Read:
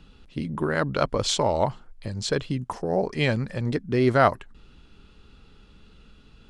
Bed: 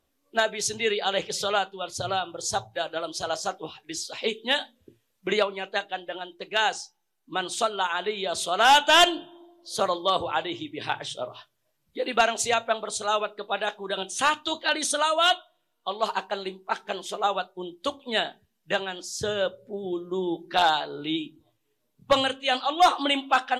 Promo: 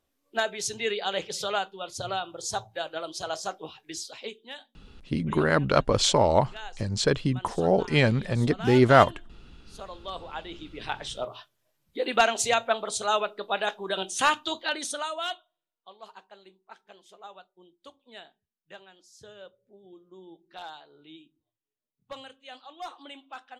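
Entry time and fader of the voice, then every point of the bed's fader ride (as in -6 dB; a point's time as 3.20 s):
4.75 s, +2.0 dB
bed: 4.03 s -3.5 dB
4.51 s -17.5 dB
9.78 s -17.5 dB
11.24 s 0 dB
14.31 s 0 dB
16.03 s -20.5 dB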